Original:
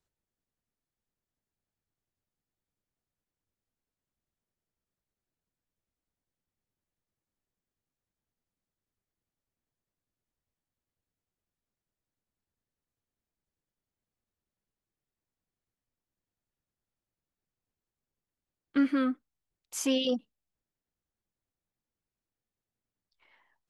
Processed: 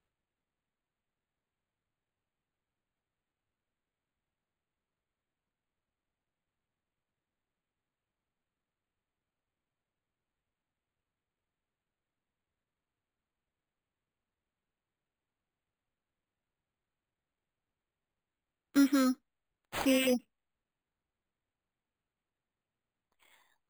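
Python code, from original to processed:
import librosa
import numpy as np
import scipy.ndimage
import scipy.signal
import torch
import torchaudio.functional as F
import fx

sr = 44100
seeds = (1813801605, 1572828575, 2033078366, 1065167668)

y = np.repeat(x[::8], 8)[:len(x)]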